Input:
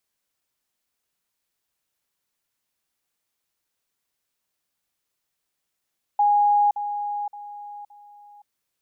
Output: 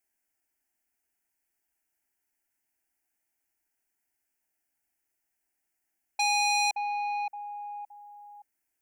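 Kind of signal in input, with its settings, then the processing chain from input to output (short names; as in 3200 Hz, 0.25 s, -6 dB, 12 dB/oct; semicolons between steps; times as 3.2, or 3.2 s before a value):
level ladder 824 Hz -15 dBFS, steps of -10 dB, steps 4, 0.52 s 0.05 s
fixed phaser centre 760 Hz, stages 8; core saturation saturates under 3400 Hz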